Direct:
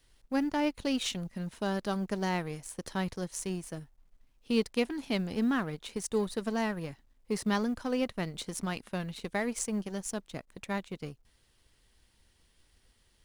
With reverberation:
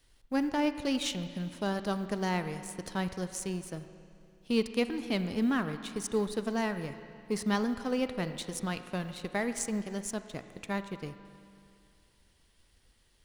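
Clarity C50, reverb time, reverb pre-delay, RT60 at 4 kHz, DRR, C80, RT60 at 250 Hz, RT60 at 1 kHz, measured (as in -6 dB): 10.5 dB, 2.5 s, 34 ms, 2.4 s, 10.0 dB, 11.5 dB, 2.4 s, 2.5 s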